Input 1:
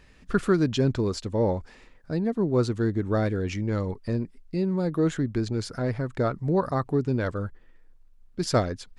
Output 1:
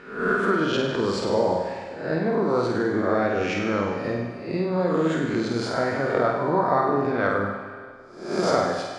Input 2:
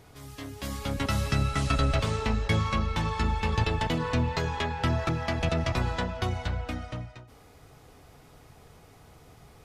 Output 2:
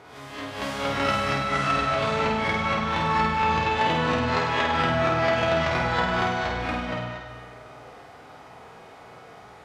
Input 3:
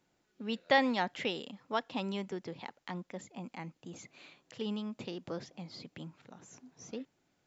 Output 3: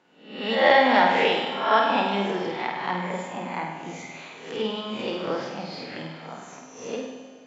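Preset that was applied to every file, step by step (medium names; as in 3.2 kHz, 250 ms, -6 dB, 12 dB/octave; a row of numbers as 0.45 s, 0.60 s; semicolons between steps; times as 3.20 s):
reverse spectral sustain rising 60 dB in 0.59 s; compression, threshold -25 dBFS; band-pass filter 1 kHz, Q 0.59; on a send: flutter echo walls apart 8.6 m, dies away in 0.71 s; on the sum: Schroeder reverb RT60 2 s, combs from 33 ms, DRR 6 dB; normalise loudness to -24 LUFS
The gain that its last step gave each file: +9.5 dB, +8.5 dB, +13.0 dB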